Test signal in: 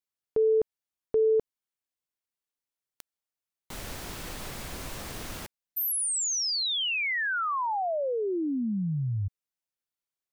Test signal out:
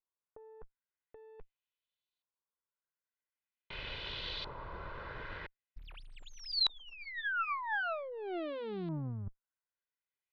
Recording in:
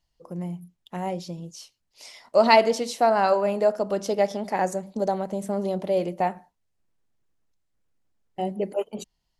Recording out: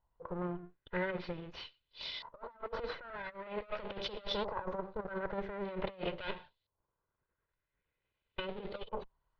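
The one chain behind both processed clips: minimum comb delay 2 ms; negative-ratio compressor -32 dBFS, ratio -0.5; resonant high shelf 5800 Hz -13.5 dB, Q 3; LFO low-pass saw up 0.45 Hz 980–4000 Hz; gain -8 dB

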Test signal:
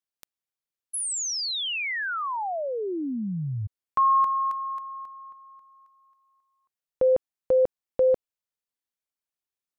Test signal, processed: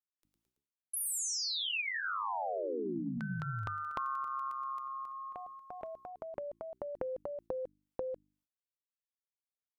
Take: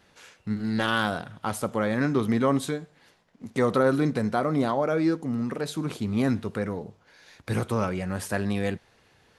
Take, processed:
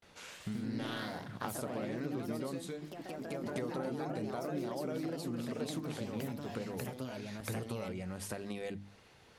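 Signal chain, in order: notches 50/100/150/200/250/300 Hz; gate with hold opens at -52 dBFS, closes at -56 dBFS, hold 0.203 s, range -29 dB; notch 1700 Hz, Q 12; dynamic EQ 1200 Hz, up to -6 dB, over -40 dBFS, Q 1.1; compressor 12:1, threshold -37 dBFS; echoes that change speed 0.133 s, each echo +2 st, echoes 3

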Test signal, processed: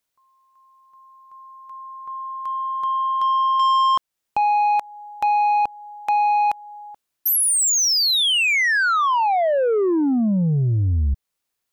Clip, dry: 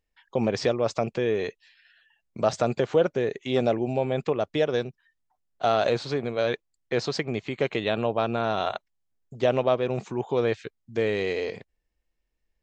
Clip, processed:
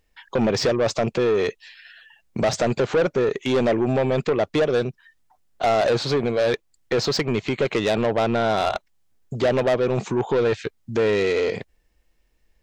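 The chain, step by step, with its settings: in parallel at -1 dB: compressor 6:1, threshold -35 dBFS; on the sum: soft clip -22.5 dBFS; gain +7.5 dB

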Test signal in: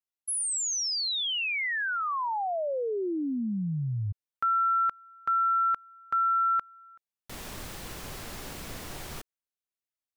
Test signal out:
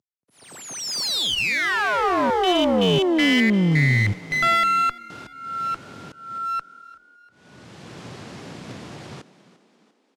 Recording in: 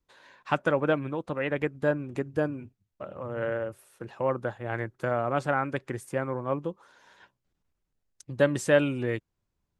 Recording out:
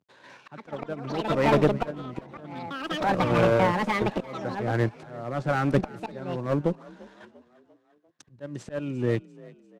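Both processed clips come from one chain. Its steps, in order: CVSD 64 kbps; echoes that change speed 0.232 s, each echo +7 st, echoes 2; HPF 110 Hz 24 dB/oct; low shelf 490 Hz +9 dB; in parallel at +1 dB: level quantiser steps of 18 dB; on the sum: auto swell 0.745 s; LPF 5600 Hz 12 dB/oct; one-sided clip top -26.5 dBFS; on a send: frequency-shifting echo 0.346 s, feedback 51%, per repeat +38 Hz, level -17 dB; on the sum: upward expander 1.5:1, over -36 dBFS; gain +5.5 dB

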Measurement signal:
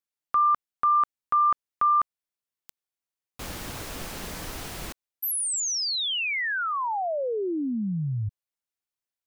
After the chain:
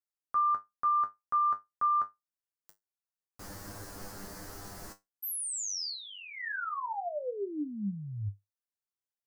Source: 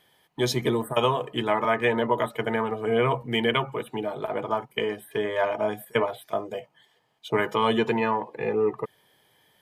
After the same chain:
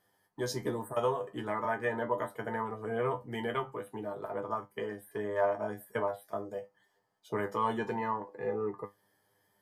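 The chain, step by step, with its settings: band shelf 2900 Hz -11 dB 1 oct; resonator 100 Hz, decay 0.17 s, harmonics all, mix 90%; gain -1.5 dB

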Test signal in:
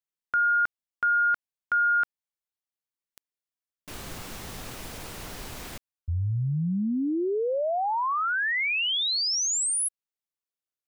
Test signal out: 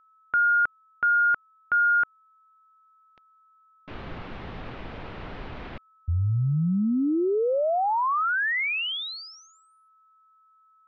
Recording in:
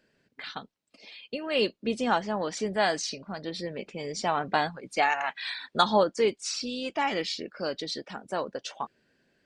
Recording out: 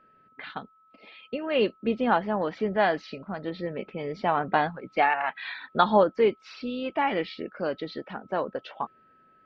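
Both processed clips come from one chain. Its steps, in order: Bessel low-pass 2200 Hz, order 6; whine 1300 Hz -61 dBFS; gain +3 dB

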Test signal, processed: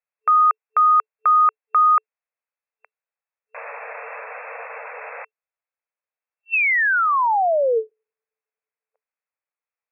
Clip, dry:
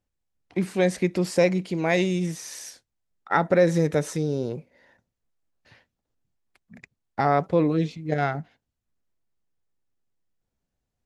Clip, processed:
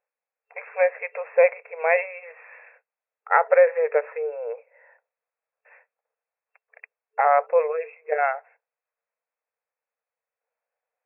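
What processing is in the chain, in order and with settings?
FFT band-pass 440–2700 Hz; gain +4 dB

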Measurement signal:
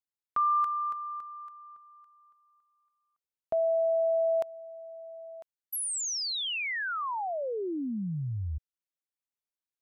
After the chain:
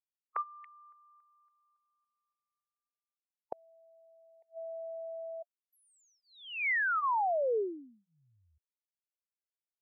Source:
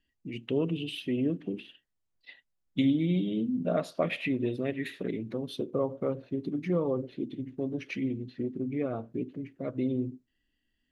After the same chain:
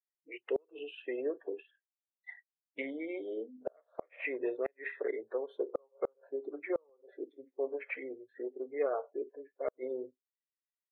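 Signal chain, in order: spectral noise reduction 29 dB; elliptic band-pass 420–2200 Hz, stop band 40 dB; flipped gate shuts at -25 dBFS, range -38 dB; gain +3.5 dB

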